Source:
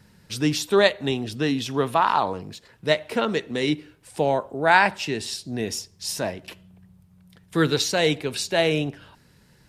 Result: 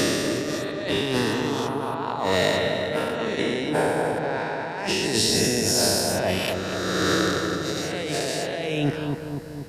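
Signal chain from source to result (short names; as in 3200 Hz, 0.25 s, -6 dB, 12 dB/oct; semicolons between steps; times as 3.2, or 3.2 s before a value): spectral swells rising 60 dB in 2.40 s; high shelf 8900 Hz +3 dB; negative-ratio compressor -27 dBFS, ratio -1; on a send: darkening echo 0.243 s, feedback 65%, low-pass 1200 Hz, level -4 dB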